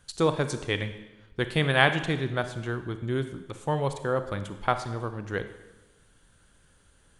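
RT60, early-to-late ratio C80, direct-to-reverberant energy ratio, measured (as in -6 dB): 1.0 s, 12.5 dB, 9.0 dB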